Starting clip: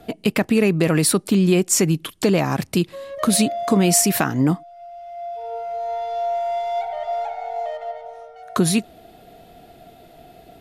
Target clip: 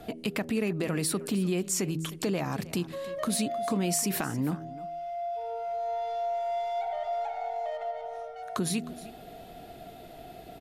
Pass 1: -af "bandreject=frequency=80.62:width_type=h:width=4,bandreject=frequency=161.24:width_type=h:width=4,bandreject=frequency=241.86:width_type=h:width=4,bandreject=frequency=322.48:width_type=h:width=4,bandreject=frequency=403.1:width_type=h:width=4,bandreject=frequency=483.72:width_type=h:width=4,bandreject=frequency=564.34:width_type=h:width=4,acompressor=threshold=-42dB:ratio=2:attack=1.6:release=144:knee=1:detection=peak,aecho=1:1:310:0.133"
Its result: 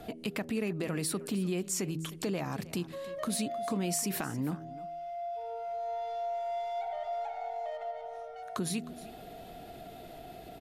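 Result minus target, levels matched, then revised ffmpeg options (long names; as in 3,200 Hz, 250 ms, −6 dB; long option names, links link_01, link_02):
downward compressor: peak gain reduction +4 dB
-af "bandreject=frequency=80.62:width_type=h:width=4,bandreject=frequency=161.24:width_type=h:width=4,bandreject=frequency=241.86:width_type=h:width=4,bandreject=frequency=322.48:width_type=h:width=4,bandreject=frequency=403.1:width_type=h:width=4,bandreject=frequency=483.72:width_type=h:width=4,bandreject=frequency=564.34:width_type=h:width=4,acompressor=threshold=-34dB:ratio=2:attack=1.6:release=144:knee=1:detection=peak,aecho=1:1:310:0.133"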